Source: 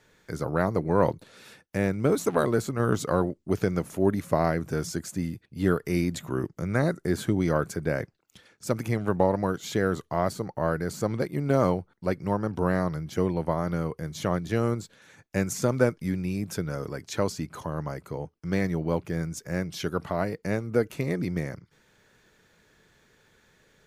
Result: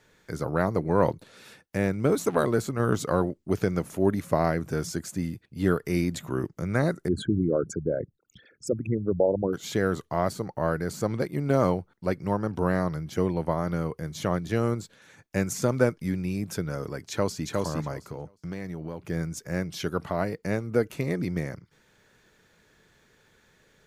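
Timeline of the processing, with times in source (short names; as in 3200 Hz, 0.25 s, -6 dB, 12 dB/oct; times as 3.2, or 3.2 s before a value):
7.08–9.53 formant sharpening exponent 3
17.09–17.49 echo throw 0.36 s, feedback 15%, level -2 dB
18.1–19.08 compressor 5:1, threshold -31 dBFS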